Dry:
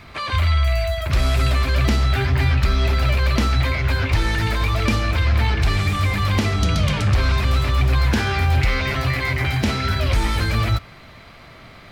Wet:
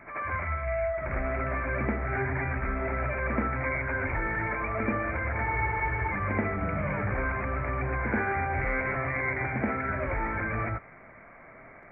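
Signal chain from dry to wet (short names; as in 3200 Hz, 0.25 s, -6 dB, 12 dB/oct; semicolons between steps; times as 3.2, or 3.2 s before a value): rippled Chebyshev low-pass 2300 Hz, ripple 3 dB; bell 72 Hz -11 dB 2.1 oct; added harmonics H 2 -43 dB, 3 -40 dB, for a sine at -11 dBFS; reverse echo 80 ms -6.5 dB; spectral freeze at 5.48, 0.63 s; gain -3.5 dB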